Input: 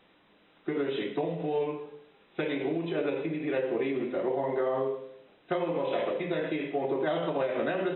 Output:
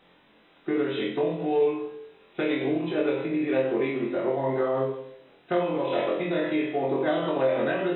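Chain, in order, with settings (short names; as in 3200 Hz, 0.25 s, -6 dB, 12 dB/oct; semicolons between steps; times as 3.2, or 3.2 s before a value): flutter echo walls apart 3.9 m, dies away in 0.39 s; gain +1.5 dB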